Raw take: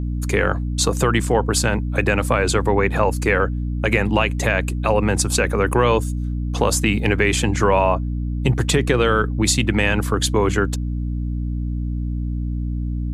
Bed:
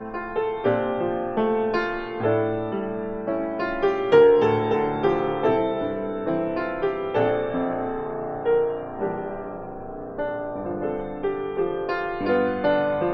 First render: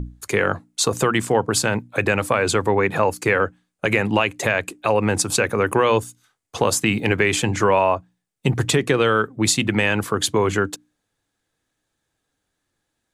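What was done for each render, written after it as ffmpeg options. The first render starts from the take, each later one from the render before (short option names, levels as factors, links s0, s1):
-af "bandreject=f=60:t=h:w=6,bandreject=f=120:t=h:w=6,bandreject=f=180:t=h:w=6,bandreject=f=240:t=h:w=6,bandreject=f=300:t=h:w=6"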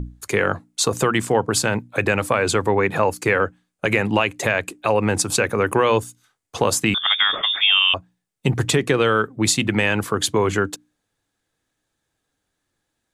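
-filter_complex "[0:a]asettb=1/sr,asplit=3[s0][s1][s2];[s0]atrim=end=6.944[s3];[s1]atrim=start=6.94:end=7.94,asetpts=PTS-STARTPTS,afade=t=in:d=0.004:c=qsin,afade=t=out:st=0.996:d=0.004:c=qsin,lowpass=f=3100:t=q:w=0.5098,lowpass=f=3100:t=q:w=0.6013,lowpass=f=3100:t=q:w=0.9,lowpass=f=3100:t=q:w=2.563,afreqshift=-3700[s4];[s2]atrim=start=7.936[s5];[s3][s4]acrossfade=d=0.004:c1=hsin:c2=qsin[s6];[s6][s5]acrossfade=d=0.004:c1=qsin:c2=hsin"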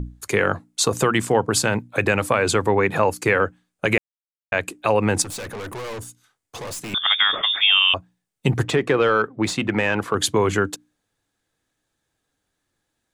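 -filter_complex "[0:a]asettb=1/sr,asplit=3[s0][s1][s2];[s0]atrim=end=5.224[s3];[s1]atrim=start=5.22:end=6.94,asetpts=PTS-STARTPTS,afade=t=in:d=0.004:c=qsin,afade=t=out:st=1.716:d=0.004:c=qsin,aeval=exprs='(tanh(31.6*val(0)+0.15)-tanh(0.15))/31.6':c=same[s4];[s2]atrim=start=6.936[s5];[s3][s4]acrossfade=d=0.004:c1=hsin:c2=qsin[s6];[s6][s5]acrossfade=d=0.004:c1=qsin:c2=hsin,asettb=1/sr,asplit=3[s7][s8][s9];[s7]atrim=end=8.634[s10];[s8]atrim=start=8.63:end=10.15,asetpts=PTS-STARTPTS,afade=t=in:d=0.004:c=qsin,afade=t=out:st=1.516:d=0.004:c=qsin,asplit=2[s11][s12];[s12]highpass=f=720:p=1,volume=3.55,asoftclip=type=tanh:threshold=0.596[s13];[s11][s13]amix=inputs=2:normalize=0,lowpass=f=1100:p=1,volume=0.501[s14];[s9]atrim=start=10.146[s15];[s10][s14]acrossfade=d=0.004:c1=hsin:c2=qsin[s16];[s16][s15]acrossfade=d=0.004:c1=qsin:c2=hsin,asplit=3[s17][s18][s19];[s17]atrim=end=3.98,asetpts=PTS-STARTPTS,afade=t=out:st=3.976:d=0.004:c=hsin[s20];[s18]atrim=start=3.98:end=4.52,asetpts=PTS-STARTPTS,volume=0[s21];[s19]atrim=start=4.52,asetpts=PTS-STARTPTS,afade=t=in:d=0.004:c=hsin[s22];[s20][s21][s22]concat=n=3:v=0:a=1"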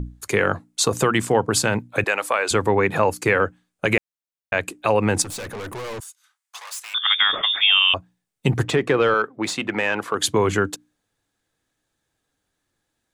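-filter_complex "[0:a]asettb=1/sr,asplit=3[s0][s1][s2];[s0]atrim=end=2.044[s3];[s1]atrim=start=2.04:end=2.51,asetpts=PTS-STARTPTS,afade=t=in:d=0.004:c=qsin,afade=t=out:st=0.466:d=0.004:c=qsin,highpass=580[s4];[s2]atrim=start=2.506[s5];[s3][s4]acrossfade=d=0.004:c1=hsin:c2=qsin[s6];[s6][s5]acrossfade=d=0.004:c1=qsin:c2=hsin,asettb=1/sr,asplit=3[s7][s8][s9];[s7]atrim=end=6.004[s10];[s8]atrim=start=6:end=7.18,asetpts=PTS-STARTPTS,afade=t=in:d=0.004:c=qsin,afade=t=out:st=1.176:d=0.004:c=qsin,highpass=f=950:w=0.5412,highpass=f=950:w=1.3066[s11];[s9]atrim=start=7.176[s12];[s10][s11]acrossfade=d=0.004:c1=hsin:c2=qsin[s13];[s13][s12]acrossfade=d=0.004:c1=qsin:c2=hsin,asettb=1/sr,asplit=3[s14][s15][s16];[s14]atrim=end=9.144[s17];[s15]atrim=start=9.14:end=10.25,asetpts=PTS-STARTPTS,afade=t=in:d=0.004:c=qsin,afade=t=out:st=1.106:d=0.004:c=qsin,highpass=f=360:p=1[s18];[s16]atrim=start=10.246[s19];[s17][s18]acrossfade=d=0.004:c1=hsin:c2=qsin[s20];[s20][s19]acrossfade=d=0.004:c1=qsin:c2=hsin"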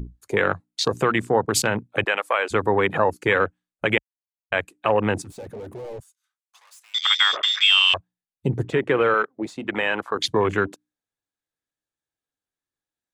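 -af "afwtdn=0.0501,lowshelf=f=280:g=-4.5"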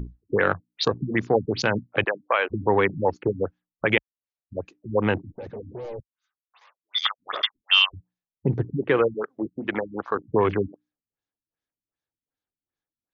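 -af "afftfilt=real='re*lt(b*sr/1024,280*pow(7300/280,0.5+0.5*sin(2*PI*2.6*pts/sr)))':imag='im*lt(b*sr/1024,280*pow(7300/280,0.5+0.5*sin(2*PI*2.6*pts/sr)))':win_size=1024:overlap=0.75"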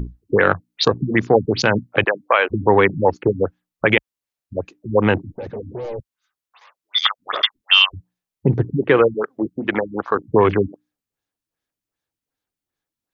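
-af "volume=2.11,alimiter=limit=0.891:level=0:latency=1"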